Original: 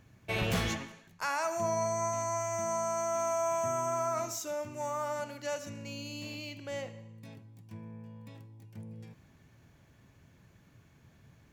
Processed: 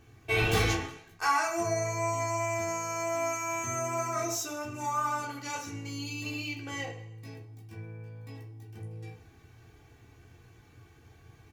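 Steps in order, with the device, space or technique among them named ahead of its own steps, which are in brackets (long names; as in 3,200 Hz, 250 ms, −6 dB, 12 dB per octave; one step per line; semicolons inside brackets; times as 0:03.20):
microphone above a desk (comb filter 2.6 ms, depth 78%; convolution reverb RT60 0.30 s, pre-delay 9 ms, DRR −1 dB)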